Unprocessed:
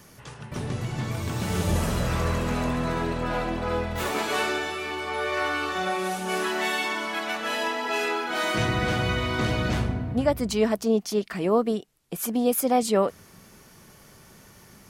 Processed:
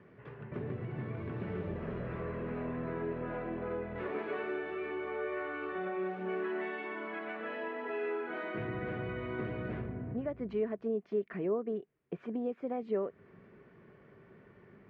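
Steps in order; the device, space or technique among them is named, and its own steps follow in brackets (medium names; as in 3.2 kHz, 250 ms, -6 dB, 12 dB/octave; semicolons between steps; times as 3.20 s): bass amplifier (compression 3:1, threshold -30 dBFS, peak gain reduction 10 dB; cabinet simulation 67–2100 Hz, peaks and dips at 75 Hz -10 dB, 400 Hz +8 dB, 850 Hz -7 dB, 1.3 kHz -4 dB); trim -5.5 dB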